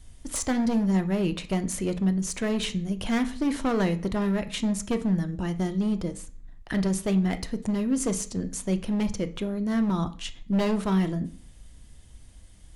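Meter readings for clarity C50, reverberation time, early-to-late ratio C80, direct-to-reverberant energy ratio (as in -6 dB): 16.0 dB, 0.45 s, 20.0 dB, 9.0 dB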